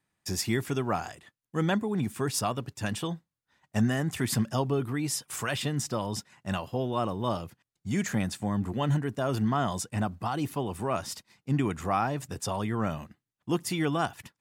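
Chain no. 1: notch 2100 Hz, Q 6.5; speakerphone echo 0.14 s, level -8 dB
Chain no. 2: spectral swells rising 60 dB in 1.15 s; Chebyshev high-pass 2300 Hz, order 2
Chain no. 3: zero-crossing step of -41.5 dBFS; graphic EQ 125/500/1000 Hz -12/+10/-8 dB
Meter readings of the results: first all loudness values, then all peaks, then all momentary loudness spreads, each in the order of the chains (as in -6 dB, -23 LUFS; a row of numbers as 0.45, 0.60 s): -30.5, -34.0, -29.5 LUFS; -14.0, -12.5, -13.0 dBFS; 7, 13, 9 LU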